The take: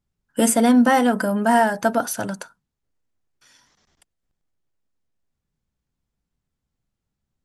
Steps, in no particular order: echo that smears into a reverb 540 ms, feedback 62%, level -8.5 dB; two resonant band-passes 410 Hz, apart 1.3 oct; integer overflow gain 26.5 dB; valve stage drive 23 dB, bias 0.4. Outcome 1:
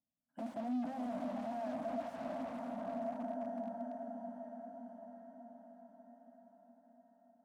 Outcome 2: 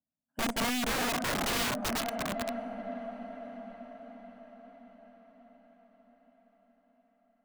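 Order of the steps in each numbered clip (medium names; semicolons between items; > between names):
echo that smears into a reverb > valve stage > integer overflow > two resonant band-passes; two resonant band-passes > valve stage > echo that smears into a reverb > integer overflow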